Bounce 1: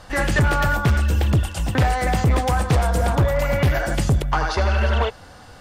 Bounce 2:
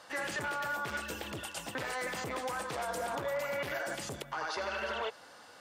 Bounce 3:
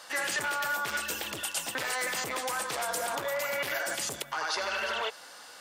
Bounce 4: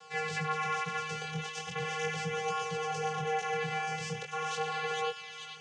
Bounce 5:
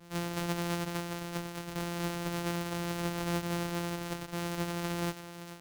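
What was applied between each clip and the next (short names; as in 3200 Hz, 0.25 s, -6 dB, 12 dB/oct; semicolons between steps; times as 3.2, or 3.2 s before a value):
Bessel high-pass 440 Hz, order 2; notch 750 Hz, Q 15; limiter -20 dBFS, peak gain reduction 10 dB; gain -7 dB
tilt +2.5 dB/oct; gain +3.5 dB
vocoder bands 8, square 156 Hz; thin delay 0.442 s, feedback 50%, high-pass 2100 Hz, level -4 dB; chorus 0.39 Hz, delay 16.5 ms, depth 7.9 ms; gain +1.5 dB
sample sorter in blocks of 256 samples; on a send at -20.5 dB: reverb RT60 0.35 s, pre-delay 10 ms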